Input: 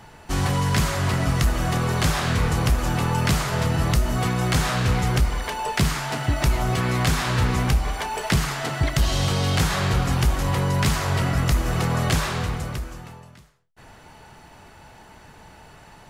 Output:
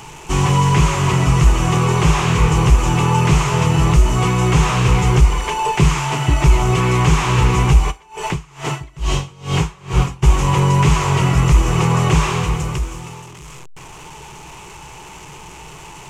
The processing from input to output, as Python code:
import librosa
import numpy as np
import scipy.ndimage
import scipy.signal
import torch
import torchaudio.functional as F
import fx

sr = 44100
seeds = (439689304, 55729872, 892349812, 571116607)

y = fx.delta_mod(x, sr, bps=64000, step_db=-38.0)
y = fx.ripple_eq(y, sr, per_octave=0.72, db=10)
y = fx.tremolo_db(y, sr, hz=2.3, depth_db=28, at=(7.9, 10.22), fade=0.02)
y = F.gain(torch.from_numpy(y), 5.5).numpy()